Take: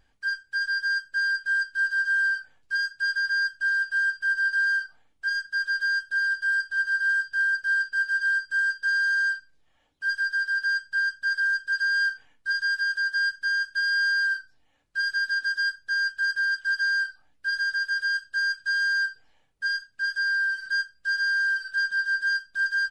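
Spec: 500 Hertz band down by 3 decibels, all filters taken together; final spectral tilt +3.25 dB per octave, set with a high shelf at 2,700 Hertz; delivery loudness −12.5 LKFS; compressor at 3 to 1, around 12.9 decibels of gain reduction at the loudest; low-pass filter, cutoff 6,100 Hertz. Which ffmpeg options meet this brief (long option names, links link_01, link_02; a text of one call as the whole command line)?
ffmpeg -i in.wav -af "lowpass=6100,equalizer=frequency=500:width_type=o:gain=-4,highshelf=frequency=2700:gain=4,acompressor=threshold=-40dB:ratio=3,volume=24dB" out.wav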